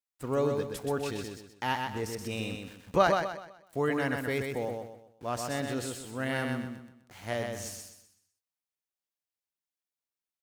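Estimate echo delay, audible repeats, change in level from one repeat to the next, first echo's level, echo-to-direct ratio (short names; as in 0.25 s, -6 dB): 0.126 s, 4, -9.0 dB, -4.5 dB, -4.0 dB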